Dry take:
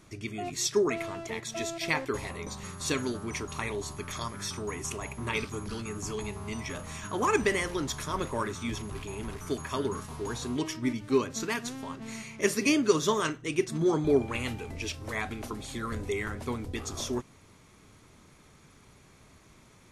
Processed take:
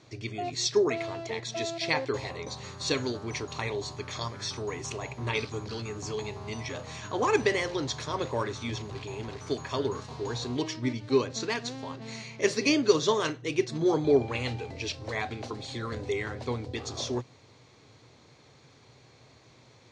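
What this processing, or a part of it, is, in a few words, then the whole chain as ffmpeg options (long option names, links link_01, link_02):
car door speaker: -af "highpass=100,equalizer=frequency=120:width_type=q:width=4:gain=8,equalizer=frequency=190:width_type=q:width=4:gain=-9,equalizer=frequency=500:width_type=q:width=4:gain=6,equalizer=frequency=760:width_type=q:width=4:gain=4,equalizer=frequency=1300:width_type=q:width=4:gain=-4,equalizer=frequency=4200:width_type=q:width=4:gain=8,lowpass=frequency=6600:width=0.5412,lowpass=frequency=6600:width=1.3066"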